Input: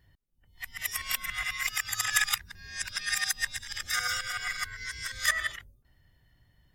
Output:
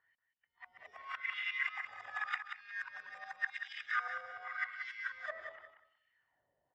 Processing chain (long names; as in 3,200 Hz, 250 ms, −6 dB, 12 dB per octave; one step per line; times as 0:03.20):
low-shelf EQ 330 Hz −9.5 dB
hum removal 182.2 Hz, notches 8
LFO wah 0.88 Hz 540–2,900 Hz, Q 3.3
head-to-tape spacing loss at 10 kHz 28 dB
repeating echo 184 ms, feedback 18%, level −8 dB
level +6.5 dB